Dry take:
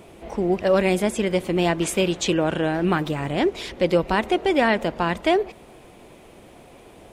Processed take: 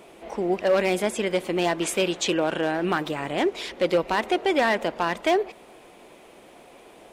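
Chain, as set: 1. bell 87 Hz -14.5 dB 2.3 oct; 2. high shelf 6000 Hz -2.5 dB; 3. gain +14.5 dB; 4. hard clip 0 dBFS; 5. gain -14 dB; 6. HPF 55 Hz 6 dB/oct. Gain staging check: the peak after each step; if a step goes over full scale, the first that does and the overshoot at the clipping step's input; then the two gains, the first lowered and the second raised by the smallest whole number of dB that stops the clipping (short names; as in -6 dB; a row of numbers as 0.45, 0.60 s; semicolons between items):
-7.0, -7.0, +7.5, 0.0, -14.0, -12.5 dBFS; step 3, 7.5 dB; step 3 +6.5 dB, step 5 -6 dB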